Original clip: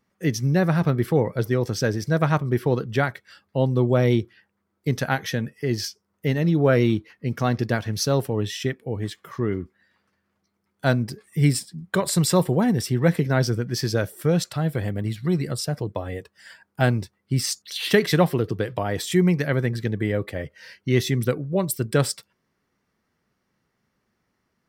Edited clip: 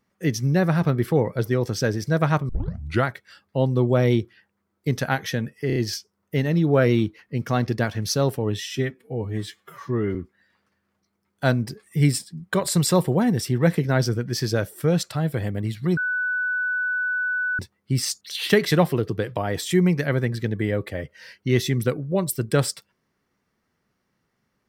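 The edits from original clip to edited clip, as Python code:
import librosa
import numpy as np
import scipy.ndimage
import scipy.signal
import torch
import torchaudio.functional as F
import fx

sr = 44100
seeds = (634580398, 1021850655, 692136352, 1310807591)

y = fx.edit(x, sr, fx.tape_start(start_s=2.49, length_s=0.57),
    fx.stutter(start_s=5.67, slice_s=0.03, count=4),
    fx.stretch_span(start_s=8.56, length_s=1.0, factor=1.5),
    fx.bleep(start_s=15.38, length_s=1.62, hz=1490.0, db=-21.5), tone=tone)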